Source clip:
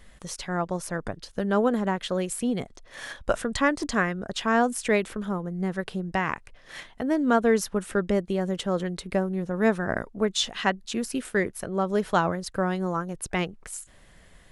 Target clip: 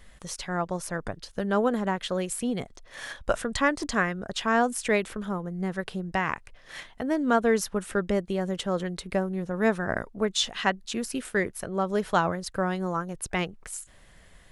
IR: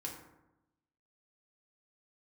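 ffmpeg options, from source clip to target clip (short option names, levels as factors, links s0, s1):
-af "equalizer=f=270:t=o:w=1.9:g=-2.5"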